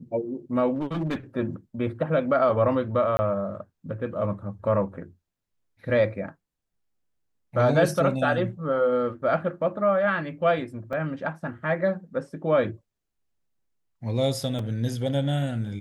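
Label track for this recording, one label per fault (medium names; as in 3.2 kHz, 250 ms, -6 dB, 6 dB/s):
0.740000	1.160000	clipped -23.5 dBFS
3.170000	3.190000	dropout 20 ms
10.930000	10.930000	dropout 3.9 ms
14.590000	14.590000	dropout 2.7 ms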